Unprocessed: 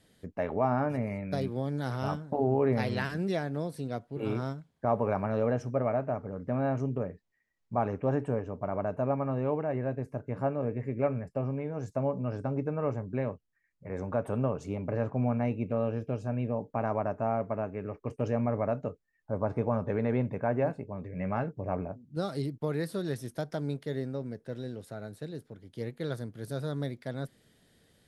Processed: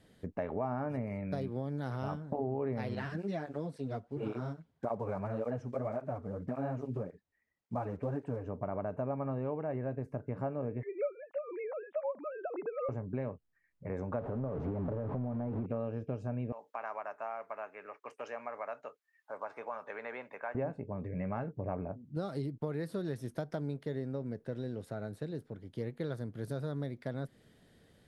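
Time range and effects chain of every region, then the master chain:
2.95–8.44 s: block-companded coder 7-bit + low-pass 8.7 kHz + cancelling through-zero flanger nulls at 1.8 Hz, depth 8 ms
10.83–12.89 s: formants replaced by sine waves + high-pass 530 Hz + upward compressor, threshold -39 dBFS
14.19–15.66 s: jump at every zero crossing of -31 dBFS + low-pass 1 kHz + compression, threshold -28 dBFS
16.52–20.55 s: high-pass 1.2 kHz + three bands compressed up and down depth 40%
whole clip: treble shelf 3 kHz -8.5 dB; compression 3:1, threshold -37 dBFS; trim +2.5 dB

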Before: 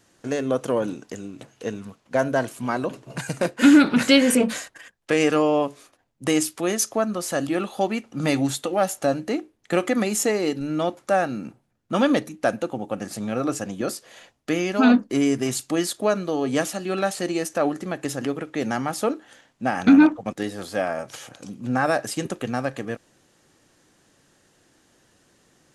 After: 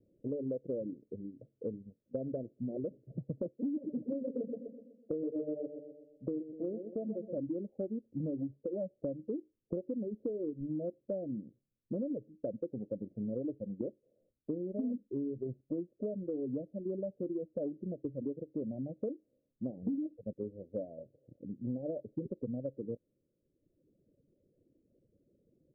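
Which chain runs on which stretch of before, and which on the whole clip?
3.55–7.38 s: bass shelf 120 Hz -11.5 dB + feedback delay 125 ms, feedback 51%, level -5 dB
whole clip: reverb removal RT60 1.3 s; steep low-pass 580 Hz 72 dB/octave; compression 10:1, threshold -28 dBFS; trim -5 dB

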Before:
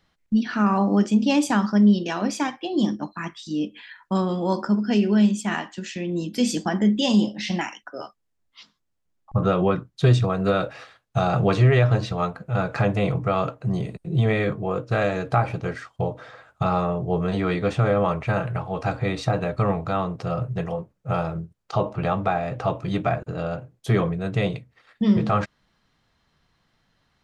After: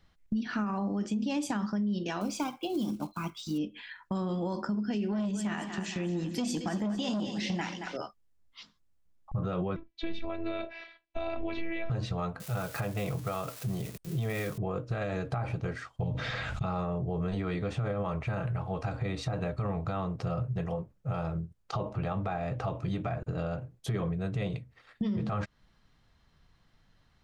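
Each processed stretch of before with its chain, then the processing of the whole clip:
2.21–3.58 s: block-companded coder 5-bit + Butterworth band-stop 1.8 kHz, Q 3.1
5.08–7.97 s: two-band feedback delay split 360 Hz, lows 101 ms, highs 225 ms, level -11.5 dB + transformer saturation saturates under 500 Hz
9.76–11.90 s: cabinet simulation 120–4200 Hz, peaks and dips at 140 Hz -9 dB, 1.3 kHz -9 dB, 2.3 kHz +10 dB + robot voice 331 Hz
12.40–14.58 s: zero-crossing glitches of -25 dBFS + tremolo triangle 1.7 Hz, depth 45% + bass shelf 340 Hz -6 dB
16.03–16.64 s: low-pass 5.7 kHz + high-order bell 700 Hz -10.5 dB 2.6 oct + level flattener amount 70%
whole clip: bass shelf 100 Hz +11.5 dB; peak limiter -14.5 dBFS; compression 2.5:1, threshold -29 dBFS; trim -2.5 dB

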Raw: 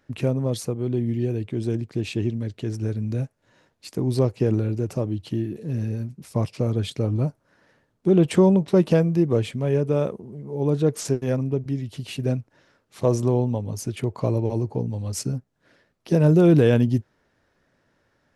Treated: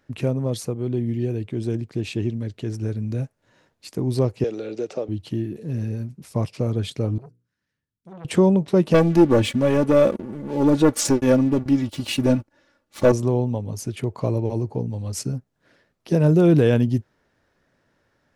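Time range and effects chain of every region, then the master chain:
4.44–5.09 s: cabinet simulation 450–7200 Hz, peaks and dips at 470 Hz +5 dB, 1 kHz -9 dB, 1.6 kHz -3 dB, 3.7 kHz +6 dB + three bands compressed up and down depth 100%
7.18–8.25 s: amplifier tone stack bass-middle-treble 6-0-2 + hum notches 60/120/180/240/300/360/420/480 Hz + transformer saturation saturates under 750 Hz
8.94–13.12 s: waveshaping leveller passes 2 + comb 3.5 ms, depth 63%
whole clip: none

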